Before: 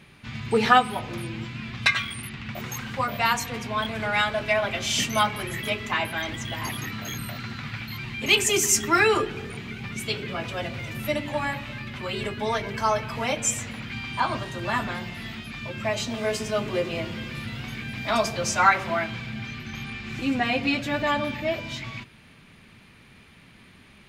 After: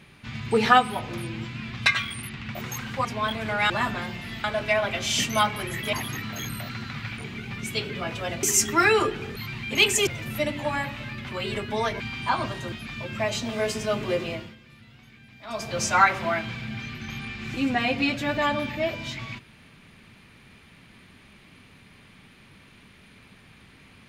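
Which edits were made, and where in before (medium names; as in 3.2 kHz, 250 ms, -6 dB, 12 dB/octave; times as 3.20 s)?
3.05–3.59 s: delete
5.73–6.62 s: delete
7.87–8.58 s: swap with 9.51–10.76 s
12.69–13.91 s: delete
14.63–15.37 s: move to 4.24 s
16.88–18.45 s: dip -17 dB, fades 0.33 s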